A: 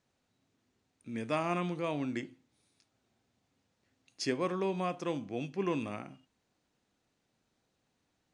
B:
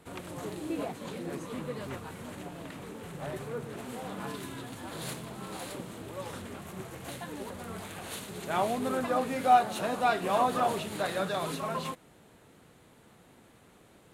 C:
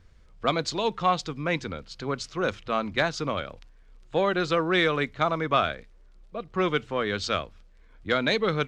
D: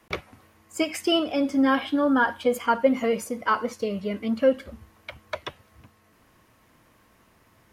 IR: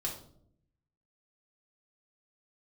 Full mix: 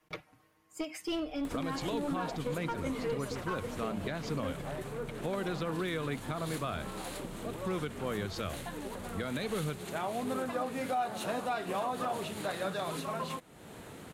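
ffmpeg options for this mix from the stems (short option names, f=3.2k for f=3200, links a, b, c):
-filter_complex "[1:a]acompressor=mode=upward:threshold=-33dB:ratio=2.5,adelay=1450,volume=-2.5dB[a];[2:a]lowshelf=f=280:g=11.5,adelay=1100,volume=-10.5dB[b];[3:a]aecho=1:1:6.5:0.97,aeval=exprs='clip(val(0),-1,0.141)':c=same,volume=-14dB[c];[a][b][c]amix=inputs=3:normalize=0,alimiter=level_in=0.5dB:limit=-24dB:level=0:latency=1:release=165,volume=-0.5dB"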